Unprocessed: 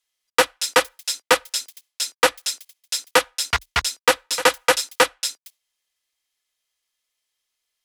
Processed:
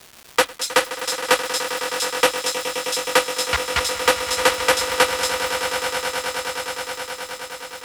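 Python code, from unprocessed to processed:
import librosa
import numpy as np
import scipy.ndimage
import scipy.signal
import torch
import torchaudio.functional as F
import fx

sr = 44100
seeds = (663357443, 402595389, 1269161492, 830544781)

y = fx.echo_swell(x, sr, ms=105, loudest=8, wet_db=-13)
y = fx.dmg_crackle(y, sr, seeds[0], per_s=450.0, level_db=-29.0)
y = F.gain(torch.from_numpy(y), -1.0).numpy()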